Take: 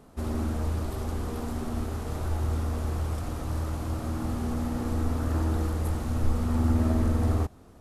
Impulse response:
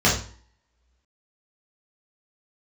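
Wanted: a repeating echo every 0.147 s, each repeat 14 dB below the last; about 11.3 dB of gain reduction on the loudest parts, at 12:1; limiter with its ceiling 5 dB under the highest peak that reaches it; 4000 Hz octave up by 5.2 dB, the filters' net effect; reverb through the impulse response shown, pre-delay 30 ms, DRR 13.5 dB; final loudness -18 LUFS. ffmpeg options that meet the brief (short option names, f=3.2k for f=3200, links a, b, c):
-filter_complex "[0:a]equalizer=f=4k:t=o:g=6.5,acompressor=threshold=-30dB:ratio=12,alimiter=level_in=3.5dB:limit=-24dB:level=0:latency=1,volume=-3.5dB,aecho=1:1:147|294:0.2|0.0399,asplit=2[a][b];[1:a]atrim=start_sample=2205,adelay=30[c];[b][c]afir=irnorm=-1:irlink=0,volume=-32.5dB[d];[a][d]amix=inputs=2:normalize=0,volume=18.5dB"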